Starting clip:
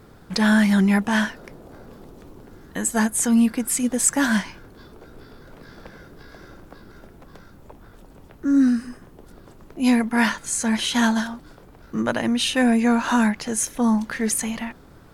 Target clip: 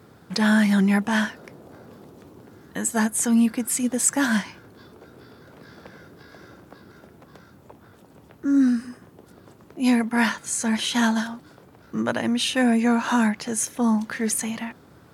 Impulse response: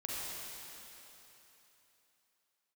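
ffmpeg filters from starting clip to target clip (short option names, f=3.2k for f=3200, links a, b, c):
-af "highpass=f=82:w=0.5412,highpass=f=82:w=1.3066,volume=-1.5dB"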